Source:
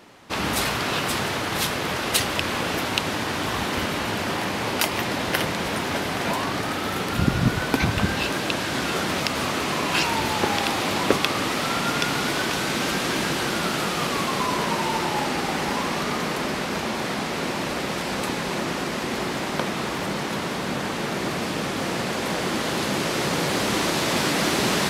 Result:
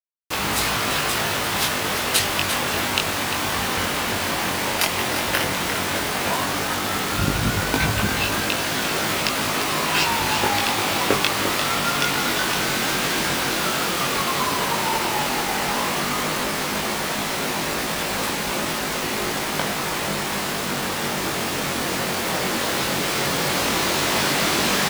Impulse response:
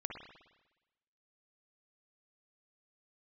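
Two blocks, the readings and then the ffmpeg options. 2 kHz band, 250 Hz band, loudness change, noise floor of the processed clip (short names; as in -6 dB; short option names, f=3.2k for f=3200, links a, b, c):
+3.0 dB, -1.0 dB, +3.0 dB, -26 dBFS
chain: -filter_complex "[0:a]equalizer=f=220:w=0.44:g=-4.5,acrusher=bits=4:mix=0:aa=0.000001,asplit=2[a][b];[b]aecho=0:1:348:0.355[c];[a][c]amix=inputs=2:normalize=0,flanger=delay=19:depth=2.8:speed=0.11,volume=5.5dB"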